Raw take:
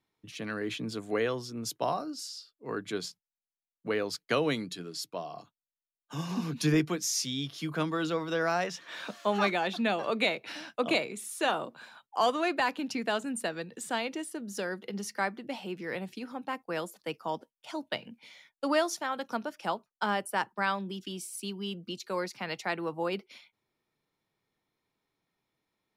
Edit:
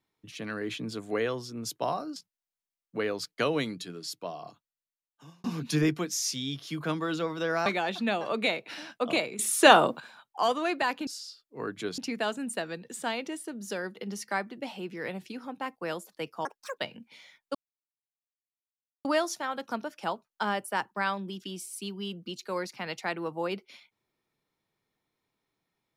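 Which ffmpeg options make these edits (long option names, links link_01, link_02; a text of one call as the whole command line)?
ffmpeg -i in.wav -filter_complex "[0:a]asplit=11[link_01][link_02][link_03][link_04][link_05][link_06][link_07][link_08][link_09][link_10][link_11];[link_01]atrim=end=2.162[link_12];[link_02]atrim=start=3.068:end=6.35,asetpts=PTS-STARTPTS,afade=type=out:start_time=2.302:duration=0.98[link_13];[link_03]atrim=start=6.35:end=8.572,asetpts=PTS-STARTPTS,afade=type=in:duration=0.004:curve=hsin[link_14];[link_04]atrim=start=9.438:end=11.172[link_15];[link_05]atrim=start=11.168:end=11.782,asetpts=PTS-STARTPTS,volume=12dB[link_16];[link_06]atrim=start=11.778:end=12.852[link_17];[link_07]atrim=start=2.158:end=3.072[link_18];[link_08]atrim=start=12.848:end=17.324[link_19];[link_09]atrim=start=17.32:end=17.89,asetpts=PTS-STARTPTS,asetrate=76734,aresample=44100[link_20];[link_10]atrim=start=17.886:end=18.66,asetpts=PTS-STARTPTS,afade=type=out:start_time=0.77:duration=0.004:curve=hsin,apad=pad_dur=1.5[link_21];[link_11]atrim=start=18.66,asetpts=PTS-STARTPTS,afade=type=in:duration=0.004:curve=hsin[link_22];[link_13][link_14]concat=n=2:v=0:a=1[link_23];[link_12][link_23]acrossfade=duration=0.004:curve1=hsin:curve2=hsin[link_24];[link_24][link_15]acrossfade=duration=0.004:curve1=hsin:curve2=hsin[link_25];[link_25][link_16]acrossfade=duration=0.004:curve1=hsin:curve2=hsin[link_26];[link_26][link_17]acrossfade=duration=0.004:curve1=hsin:curve2=hsin[link_27];[link_27][link_18]acrossfade=duration=0.004:curve1=hsin:curve2=hsin[link_28];[link_28][link_19]acrossfade=duration=0.004:curve1=hsin:curve2=hsin[link_29];[link_29][link_20]acrossfade=duration=0.004:curve1=hsin:curve2=hsin[link_30];[link_21][link_22]concat=n=2:v=0:a=1[link_31];[link_30][link_31]acrossfade=duration=0.004:curve1=hsin:curve2=hsin" out.wav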